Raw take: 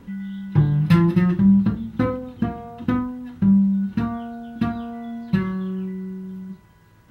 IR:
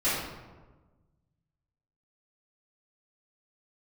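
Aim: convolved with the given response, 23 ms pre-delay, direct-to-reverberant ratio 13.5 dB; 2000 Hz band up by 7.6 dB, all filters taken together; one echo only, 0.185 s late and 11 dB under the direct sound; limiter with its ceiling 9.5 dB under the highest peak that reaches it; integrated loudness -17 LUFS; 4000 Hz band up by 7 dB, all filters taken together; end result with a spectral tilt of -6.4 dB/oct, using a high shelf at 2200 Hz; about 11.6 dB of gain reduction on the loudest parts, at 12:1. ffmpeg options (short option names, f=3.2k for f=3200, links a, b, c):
-filter_complex "[0:a]equalizer=f=2k:t=o:g=7,highshelf=f=2.2k:g=3.5,equalizer=f=4k:t=o:g=3,acompressor=threshold=-22dB:ratio=12,alimiter=limit=-22dB:level=0:latency=1,aecho=1:1:185:0.282,asplit=2[a][b];[1:a]atrim=start_sample=2205,adelay=23[c];[b][c]afir=irnorm=-1:irlink=0,volume=-26dB[d];[a][d]amix=inputs=2:normalize=0,volume=13dB"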